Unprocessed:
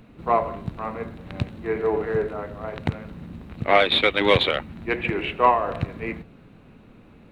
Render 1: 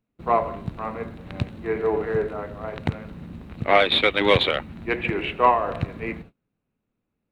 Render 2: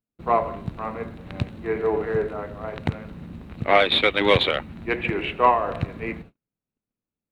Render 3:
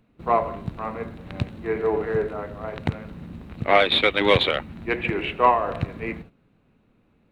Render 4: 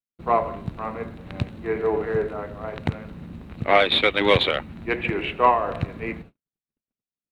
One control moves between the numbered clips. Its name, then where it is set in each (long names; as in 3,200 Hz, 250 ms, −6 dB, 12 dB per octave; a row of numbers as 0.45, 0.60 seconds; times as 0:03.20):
noise gate, range: −30, −42, −13, −59 decibels